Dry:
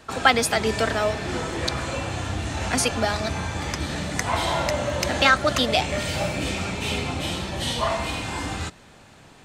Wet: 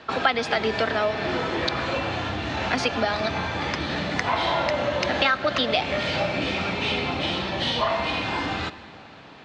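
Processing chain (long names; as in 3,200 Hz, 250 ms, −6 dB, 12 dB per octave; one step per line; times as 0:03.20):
low-pass filter 4,500 Hz 24 dB per octave
convolution reverb RT60 2.8 s, pre-delay 72 ms, DRR 16.5 dB
downward compressor 3 to 1, threshold −25 dBFS, peak gain reduction 10.5 dB
high-pass filter 220 Hz 6 dB per octave
level +5 dB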